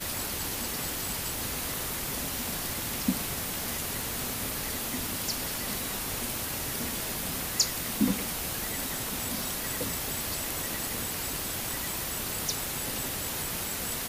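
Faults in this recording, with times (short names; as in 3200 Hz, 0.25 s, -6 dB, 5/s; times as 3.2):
tick 78 rpm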